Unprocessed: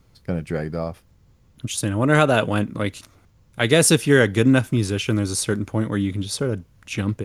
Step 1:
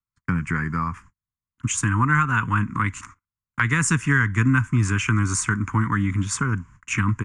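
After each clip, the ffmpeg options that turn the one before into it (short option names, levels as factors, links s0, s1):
-filter_complex "[0:a]agate=range=0.00631:threshold=0.00447:ratio=16:detection=peak,firequalizer=gain_entry='entry(250,0);entry(620,-29);entry(990,13);entry(2100,7);entry(3900,-16);entry(7100,7);entry(13000,-29)':delay=0.05:min_phase=1,acrossover=split=130[s0][s1];[s1]acompressor=threshold=0.0447:ratio=3[s2];[s0][s2]amix=inputs=2:normalize=0,volume=1.68"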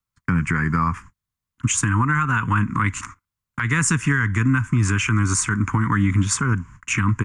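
-af "alimiter=limit=0.15:level=0:latency=1:release=156,volume=2.11"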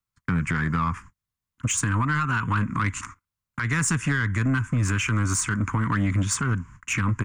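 -af "asoftclip=type=tanh:threshold=0.224,volume=0.75"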